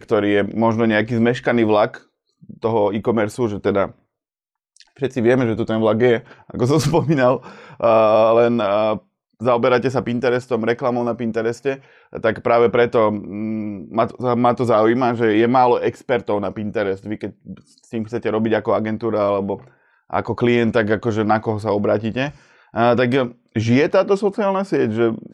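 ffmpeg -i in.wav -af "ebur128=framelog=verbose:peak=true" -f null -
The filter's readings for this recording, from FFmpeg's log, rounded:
Integrated loudness:
  I:         -18.6 LUFS
  Threshold: -29.0 LUFS
Loudness range:
  LRA:         5.1 LU
  Threshold: -39.2 LUFS
  LRA low:   -22.2 LUFS
  LRA high:  -17.1 LUFS
True peak:
  Peak:       -4.4 dBFS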